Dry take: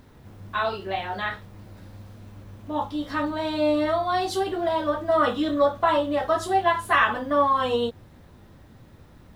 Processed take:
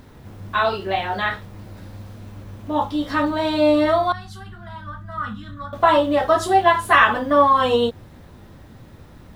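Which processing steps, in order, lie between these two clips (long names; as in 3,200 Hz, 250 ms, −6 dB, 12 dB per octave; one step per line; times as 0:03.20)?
0:04.12–0:05.73: drawn EQ curve 210 Hz 0 dB, 320 Hz −29 dB, 560 Hz −30 dB, 1,400 Hz −7 dB, 2,400 Hz −17 dB
level +6 dB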